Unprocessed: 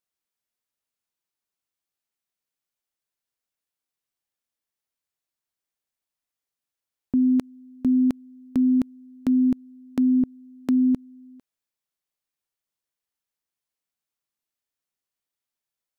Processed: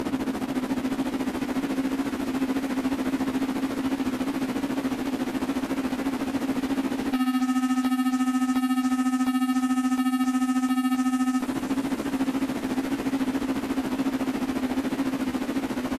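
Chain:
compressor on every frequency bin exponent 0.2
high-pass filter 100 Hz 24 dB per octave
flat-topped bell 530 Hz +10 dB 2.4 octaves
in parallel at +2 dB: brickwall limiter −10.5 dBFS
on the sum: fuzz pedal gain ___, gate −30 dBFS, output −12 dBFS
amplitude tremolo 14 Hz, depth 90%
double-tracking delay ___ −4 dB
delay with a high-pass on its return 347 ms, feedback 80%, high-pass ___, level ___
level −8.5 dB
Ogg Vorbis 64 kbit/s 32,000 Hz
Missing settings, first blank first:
28 dB, 15 ms, 1,400 Hz, −9 dB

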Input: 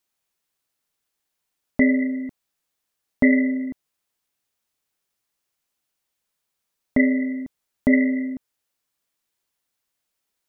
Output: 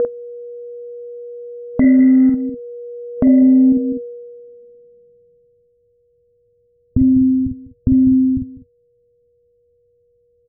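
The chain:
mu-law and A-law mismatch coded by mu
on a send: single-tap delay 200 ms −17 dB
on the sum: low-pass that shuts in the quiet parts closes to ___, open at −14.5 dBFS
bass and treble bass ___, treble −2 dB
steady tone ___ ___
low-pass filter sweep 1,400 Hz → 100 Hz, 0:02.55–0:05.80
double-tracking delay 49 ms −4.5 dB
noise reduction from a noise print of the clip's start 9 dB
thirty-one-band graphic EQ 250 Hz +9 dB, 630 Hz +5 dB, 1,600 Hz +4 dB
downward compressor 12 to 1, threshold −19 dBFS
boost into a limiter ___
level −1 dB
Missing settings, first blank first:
430 Hz, +11 dB, 480 Hz, −25 dBFS, +12 dB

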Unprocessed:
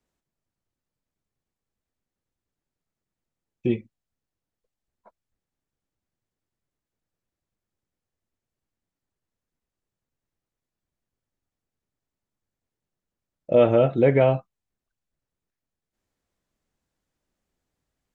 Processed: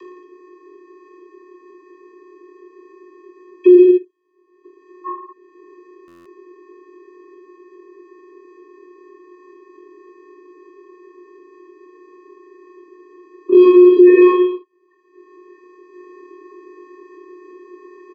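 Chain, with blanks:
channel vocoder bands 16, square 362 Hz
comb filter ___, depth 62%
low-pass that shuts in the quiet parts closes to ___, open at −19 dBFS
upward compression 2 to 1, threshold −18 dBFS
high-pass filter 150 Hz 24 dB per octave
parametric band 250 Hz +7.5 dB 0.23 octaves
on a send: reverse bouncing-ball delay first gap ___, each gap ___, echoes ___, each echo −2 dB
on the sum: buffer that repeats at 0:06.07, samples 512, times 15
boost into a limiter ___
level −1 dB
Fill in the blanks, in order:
2.1 ms, 2,000 Hz, 20 ms, 1.25×, 6, +12 dB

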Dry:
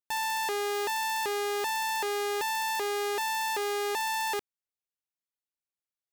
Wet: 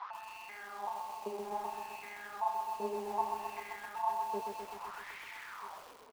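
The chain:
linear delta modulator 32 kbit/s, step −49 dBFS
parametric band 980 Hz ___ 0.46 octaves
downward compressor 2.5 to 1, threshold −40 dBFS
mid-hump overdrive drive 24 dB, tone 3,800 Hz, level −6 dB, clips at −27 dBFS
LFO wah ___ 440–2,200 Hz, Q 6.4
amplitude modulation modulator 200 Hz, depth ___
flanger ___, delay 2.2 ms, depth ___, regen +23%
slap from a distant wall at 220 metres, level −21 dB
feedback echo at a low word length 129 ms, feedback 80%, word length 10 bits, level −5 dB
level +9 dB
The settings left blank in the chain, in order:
+13 dB, 0.62 Hz, 55%, 1.7 Hz, 8.9 ms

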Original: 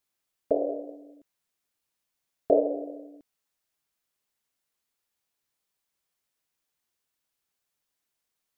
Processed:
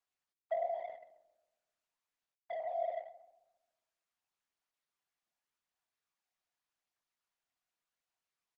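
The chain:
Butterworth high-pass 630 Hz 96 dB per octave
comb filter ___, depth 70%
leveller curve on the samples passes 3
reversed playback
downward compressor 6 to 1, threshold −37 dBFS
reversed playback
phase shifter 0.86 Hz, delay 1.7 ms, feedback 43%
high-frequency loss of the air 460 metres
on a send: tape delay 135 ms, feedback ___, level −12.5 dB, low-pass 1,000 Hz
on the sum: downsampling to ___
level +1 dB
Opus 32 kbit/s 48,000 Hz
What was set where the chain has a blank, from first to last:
4.2 ms, 51%, 16,000 Hz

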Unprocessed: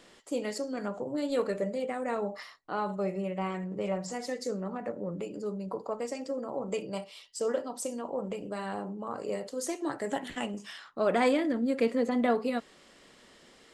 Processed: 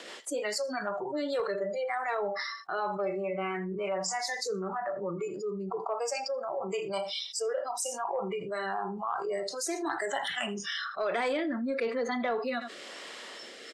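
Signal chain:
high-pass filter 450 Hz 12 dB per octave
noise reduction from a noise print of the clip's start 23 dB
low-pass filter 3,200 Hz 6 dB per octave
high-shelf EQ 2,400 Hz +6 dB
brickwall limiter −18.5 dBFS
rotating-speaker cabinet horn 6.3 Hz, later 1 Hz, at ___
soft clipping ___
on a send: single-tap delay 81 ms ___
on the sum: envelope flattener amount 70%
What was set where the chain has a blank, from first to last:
0:00.76, −21.5 dBFS, −24 dB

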